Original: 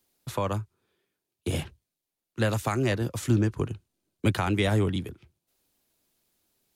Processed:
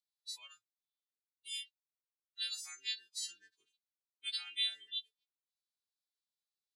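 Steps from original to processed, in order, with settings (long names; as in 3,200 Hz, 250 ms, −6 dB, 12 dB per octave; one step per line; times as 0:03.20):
every partial snapped to a pitch grid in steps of 2 semitones
noise reduction from a noise print of the clip's start 22 dB
four-pole ladder band-pass 4,200 Hz, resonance 65%
level +1.5 dB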